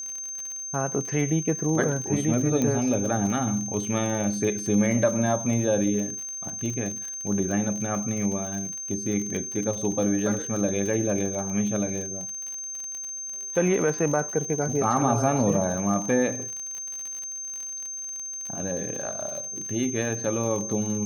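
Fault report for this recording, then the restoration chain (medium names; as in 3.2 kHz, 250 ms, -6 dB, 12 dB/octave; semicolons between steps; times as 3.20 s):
crackle 59 per s -31 dBFS
whine 6.3 kHz -32 dBFS
2.62 s: pop -13 dBFS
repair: de-click; band-stop 6.3 kHz, Q 30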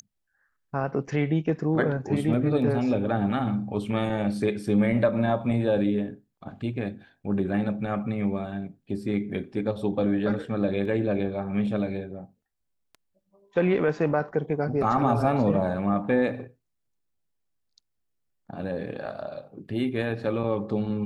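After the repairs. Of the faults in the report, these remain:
2.62 s: pop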